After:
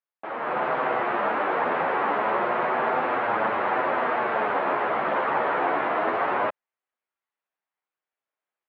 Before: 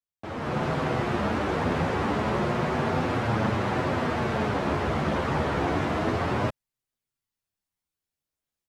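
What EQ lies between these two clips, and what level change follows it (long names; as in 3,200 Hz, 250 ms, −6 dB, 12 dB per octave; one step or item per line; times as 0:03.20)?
band-pass filter 640–2,400 Hz
high-frequency loss of the air 310 metres
+8.5 dB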